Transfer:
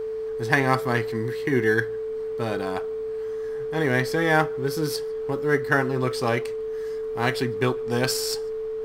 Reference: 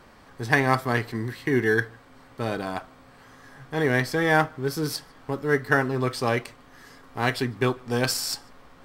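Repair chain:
hum removal 54.5 Hz, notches 5
notch filter 440 Hz, Q 30

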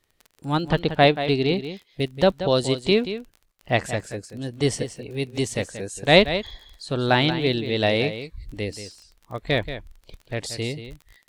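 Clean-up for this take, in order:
click removal
echo removal 181 ms −11 dB

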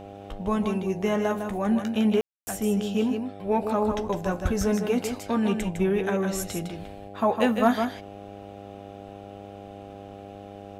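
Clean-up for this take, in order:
clipped peaks rebuilt −10.5 dBFS
hum removal 100.1 Hz, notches 8
ambience match 0:02.21–0:02.47
echo removal 156 ms −6.5 dB

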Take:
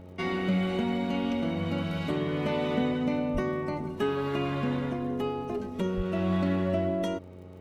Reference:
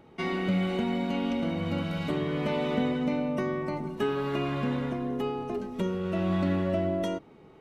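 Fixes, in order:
click removal
hum removal 91 Hz, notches 7
0:03.33–0:03.45: high-pass filter 140 Hz 24 dB per octave
0:05.96–0:06.08: high-pass filter 140 Hz 24 dB per octave

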